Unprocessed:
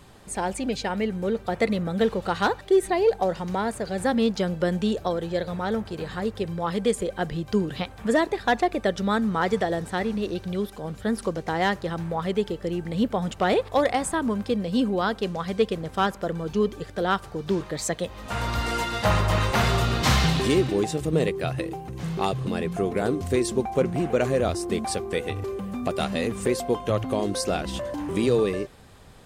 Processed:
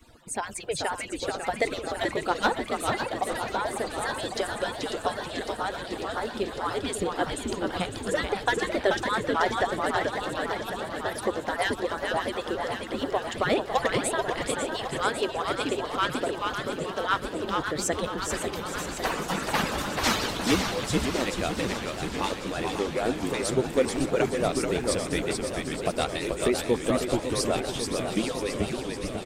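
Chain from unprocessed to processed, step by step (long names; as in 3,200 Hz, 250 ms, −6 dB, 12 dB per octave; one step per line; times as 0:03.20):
harmonic-percussive split with one part muted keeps percussive
echo with shifted repeats 433 ms, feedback 33%, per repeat −120 Hz, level −4 dB
feedback echo with a swinging delay time 550 ms, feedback 77%, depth 159 cents, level −8.5 dB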